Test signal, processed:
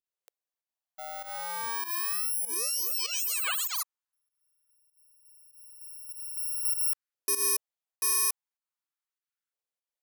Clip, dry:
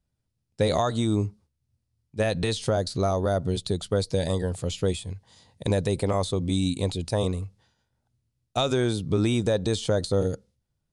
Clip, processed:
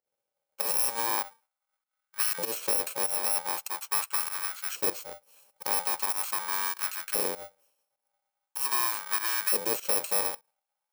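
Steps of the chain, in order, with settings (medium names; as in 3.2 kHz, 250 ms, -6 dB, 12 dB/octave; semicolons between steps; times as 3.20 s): bit-reversed sample order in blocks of 64 samples; LFO high-pass saw up 0.42 Hz 440–1500 Hz; volume shaper 98 bpm, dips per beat 1, -14 dB, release 127 ms; trim -2.5 dB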